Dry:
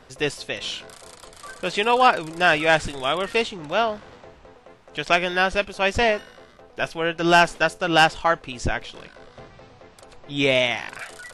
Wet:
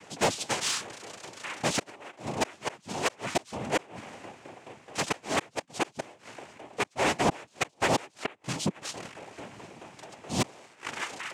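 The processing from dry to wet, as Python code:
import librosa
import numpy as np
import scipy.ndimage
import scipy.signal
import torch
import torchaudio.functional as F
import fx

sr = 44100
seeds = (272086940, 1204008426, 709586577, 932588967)

y = fx.gate_flip(x, sr, shuts_db=-11.0, range_db=-32)
y = fx.noise_vocoder(y, sr, seeds[0], bands=4)
y = 10.0 ** (-18.0 / 20.0) * np.tanh(y / 10.0 ** (-18.0 / 20.0))
y = y * 10.0 ** (1.0 / 20.0)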